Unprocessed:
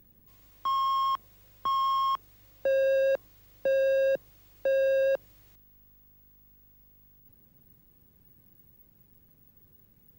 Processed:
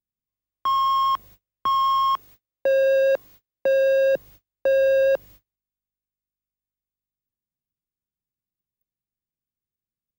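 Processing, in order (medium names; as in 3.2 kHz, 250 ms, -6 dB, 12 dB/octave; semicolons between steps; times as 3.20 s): gate -51 dBFS, range -40 dB; 2.14–4.14 s: bass shelf 110 Hz -10 dB; trim +6.5 dB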